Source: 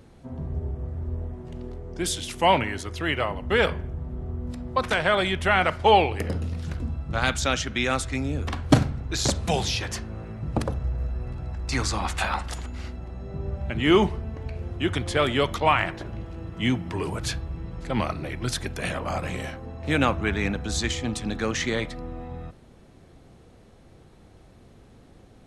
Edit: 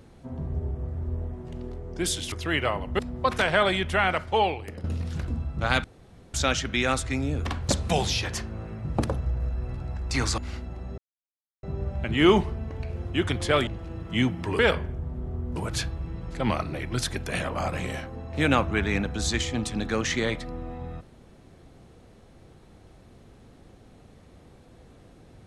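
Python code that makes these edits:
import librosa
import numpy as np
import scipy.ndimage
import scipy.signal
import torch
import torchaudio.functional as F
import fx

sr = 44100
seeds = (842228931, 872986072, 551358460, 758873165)

y = fx.edit(x, sr, fx.cut(start_s=2.32, length_s=0.55),
    fx.move(start_s=3.54, length_s=0.97, to_s=17.06),
    fx.fade_out_to(start_s=5.16, length_s=1.2, floor_db=-13.0),
    fx.insert_room_tone(at_s=7.36, length_s=0.5),
    fx.cut(start_s=8.71, length_s=0.56),
    fx.cut(start_s=11.96, length_s=0.73),
    fx.insert_silence(at_s=13.29, length_s=0.65),
    fx.cut(start_s=15.33, length_s=0.81), tone=tone)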